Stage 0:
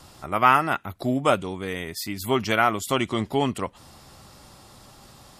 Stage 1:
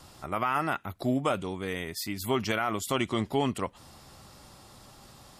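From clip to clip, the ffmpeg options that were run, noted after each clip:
-af "alimiter=limit=-13.5dB:level=0:latency=1:release=39,volume=-3dB"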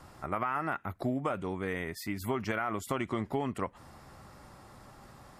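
-af "highshelf=f=2.5k:t=q:w=1.5:g=-7.5,acompressor=threshold=-28dB:ratio=6"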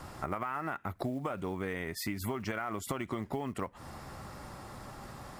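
-af "acrusher=bits=8:mode=log:mix=0:aa=0.000001,acompressor=threshold=-39dB:ratio=6,volume=6.5dB"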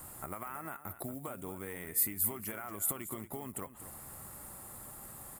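-af "aexciter=amount=15.6:drive=3:freq=7.8k,aecho=1:1:232:0.237,volume=-7.5dB"

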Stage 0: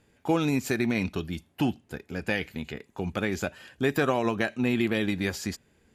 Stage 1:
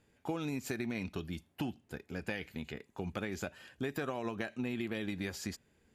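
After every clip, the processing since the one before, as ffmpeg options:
-af "acompressor=threshold=-27dB:ratio=6,volume=-6dB"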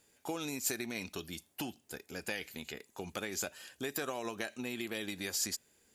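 -af "bass=f=250:g=-9,treble=f=4k:g=14"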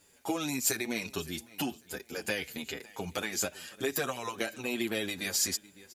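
-filter_complex "[0:a]aecho=1:1:556|1112:0.0841|0.0219,asplit=2[a][b];[b]adelay=7.3,afreqshift=-2.6[c];[a][c]amix=inputs=2:normalize=1,volume=8.5dB"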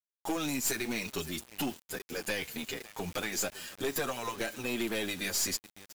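-af "acrusher=bits=7:mix=0:aa=0.000001,aeval=exprs='(tanh(25.1*val(0)+0.35)-tanh(0.35))/25.1':c=same,volume=2.5dB"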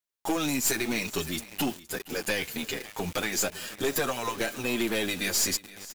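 -af "aecho=1:1:468:0.112,volume=5dB"

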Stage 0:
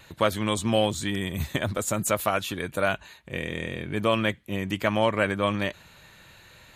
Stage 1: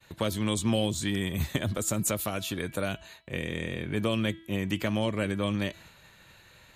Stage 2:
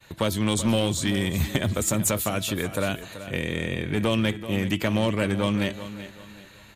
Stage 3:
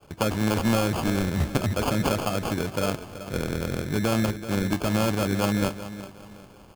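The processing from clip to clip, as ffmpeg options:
-filter_complex "[0:a]agate=range=-33dB:threshold=-47dB:ratio=3:detection=peak,bandreject=f=328:t=h:w=4,bandreject=f=656:t=h:w=4,bandreject=f=984:t=h:w=4,bandreject=f=1.312k:t=h:w=4,bandreject=f=1.64k:t=h:w=4,bandreject=f=1.968k:t=h:w=4,bandreject=f=2.296k:t=h:w=4,bandreject=f=2.624k:t=h:w=4,bandreject=f=2.952k:t=h:w=4,bandreject=f=3.28k:t=h:w=4,bandreject=f=3.608k:t=h:w=4,bandreject=f=3.936k:t=h:w=4,bandreject=f=4.264k:t=h:w=4,bandreject=f=4.592k:t=h:w=4,bandreject=f=4.92k:t=h:w=4,bandreject=f=5.248k:t=h:w=4,acrossover=split=420|3000[a][b][c];[b]acompressor=threshold=-35dB:ratio=6[d];[a][d][c]amix=inputs=3:normalize=0"
-af "aeval=exprs='clip(val(0),-1,0.0841)':c=same,aecho=1:1:382|764|1146:0.224|0.0761|0.0259,volume=5dB"
-af "acrusher=samples=23:mix=1:aa=0.000001"

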